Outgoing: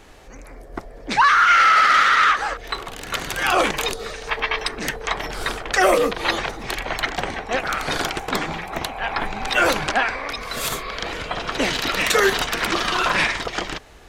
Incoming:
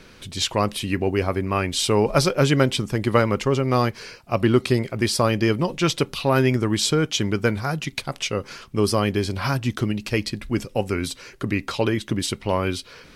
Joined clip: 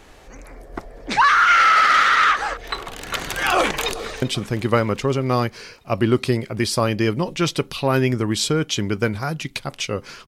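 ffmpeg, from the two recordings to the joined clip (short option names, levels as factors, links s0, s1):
-filter_complex "[0:a]apad=whole_dur=10.27,atrim=end=10.27,atrim=end=4.222[s0];[1:a]atrim=start=2.638:end=8.69[s1];[s0][s1]acrossfade=d=0.004:c1=hsin:c2=hsin,asplit=2[s2][s3];[s3]afade=t=in:st=3.56:d=0.01,afade=t=out:st=4.22:d=0.01,aecho=0:1:390|780|1170|1560|1950:0.141254|0.0776896|0.0427293|0.0235011|0.0129256[s4];[s2][s4]amix=inputs=2:normalize=0"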